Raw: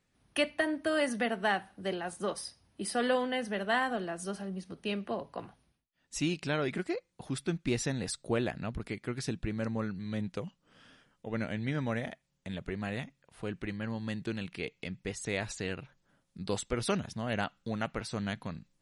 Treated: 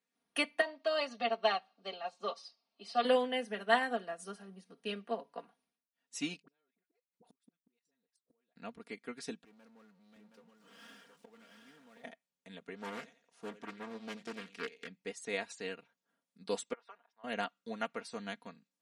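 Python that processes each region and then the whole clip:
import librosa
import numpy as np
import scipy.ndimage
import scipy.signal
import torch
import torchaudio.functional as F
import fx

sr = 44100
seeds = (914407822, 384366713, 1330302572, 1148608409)

y = fx.chain(x, sr, fx.cabinet(low_hz=270.0, low_slope=12, high_hz=6000.0, hz=(310.0, 570.0, 1100.0, 1700.0, 2700.0, 4300.0), db=(-9, 6, 5, -9, 4, 10)),
    fx.notch_comb(f0_hz=490.0), at=(0.61, 3.05))
y = fx.chain(y, sr, fx.dispersion(late='highs', ms=53.0, hz=660.0),
    fx.level_steps(step_db=12),
    fx.gate_flip(shuts_db=-31.0, range_db=-35), at=(6.42, 8.56))
y = fx.chain(y, sr, fx.gate_flip(shuts_db=-38.0, range_db=-27),
    fx.power_curve(exponent=0.5),
    fx.echo_single(ms=721, db=-5.0), at=(9.44, 12.04))
y = fx.chain(y, sr, fx.peak_eq(hz=6100.0, db=12.5, octaves=0.52),
    fx.echo_thinned(ms=88, feedback_pct=32, hz=180.0, wet_db=-11.5),
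    fx.doppler_dist(depth_ms=0.61), at=(12.76, 14.87))
y = fx.chain(y, sr, fx.ladder_bandpass(hz=1100.0, resonance_pct=35),
    fx.band_squash(depth_pct=40), at=(16.73, 17.24))
y = scipy.signal.sosfilt(scipy.signal.butter(2, 280.0, 'highpass', fs=sr, output='sos'), y)
y = y + 0.67 * np.pad(y, (int(4.3 * sr / 1000.0), 0))[:len(y)]
y = fx.upward_expand(y, sr, threshold_db=-47.0, expansion=1.5)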